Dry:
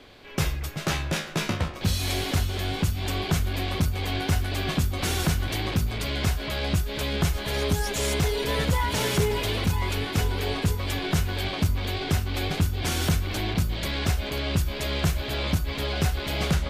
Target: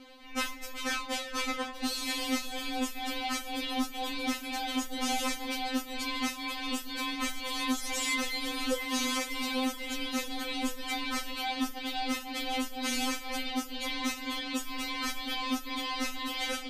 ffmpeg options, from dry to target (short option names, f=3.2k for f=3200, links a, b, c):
-filter_complex "[0:a]acrossover=split=9700[a][b];[b]acompressor=threshold=-46dB:ratio=4:attack=1:release=60[c];[a][c]amix=inputs=2:normalize=0,afftfilt=real='re*3.46*eq(mod(b,12),0)':imag='im*3.46*eq(mod(b,12),0)':win_size=2048:overlap=0.75"